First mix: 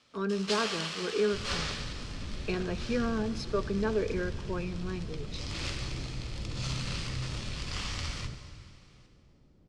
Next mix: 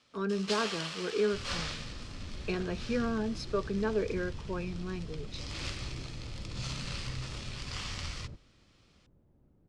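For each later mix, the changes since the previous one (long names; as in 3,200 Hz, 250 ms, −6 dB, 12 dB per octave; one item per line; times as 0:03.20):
reverb: off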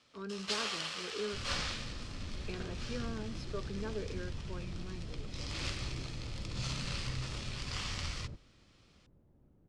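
speech −10.0 dB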